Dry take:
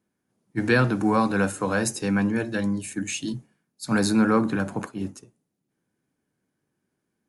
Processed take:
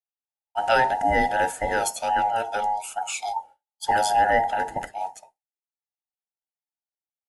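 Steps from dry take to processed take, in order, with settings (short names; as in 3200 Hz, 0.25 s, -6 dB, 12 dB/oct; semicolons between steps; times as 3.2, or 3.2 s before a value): band inversion scrambler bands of 1000 Hz; expander -46 dBFS; 3.36–3.91 small resonant body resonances 550/840/3300 Hz, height 13 dB, ringing for 25 ms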